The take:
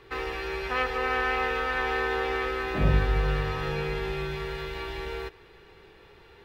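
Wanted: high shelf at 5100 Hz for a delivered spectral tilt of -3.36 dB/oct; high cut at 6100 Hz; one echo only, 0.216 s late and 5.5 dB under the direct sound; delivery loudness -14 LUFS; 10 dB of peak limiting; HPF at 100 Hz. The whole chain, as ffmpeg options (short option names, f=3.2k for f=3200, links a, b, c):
-af "highpass=100,lowpass=6.1k,highshelf=f=5.1k:g=6,alimiter=limit=-21dB:level=0:latency=1,aecho=1:1:216:0.531,volume=16.5dB"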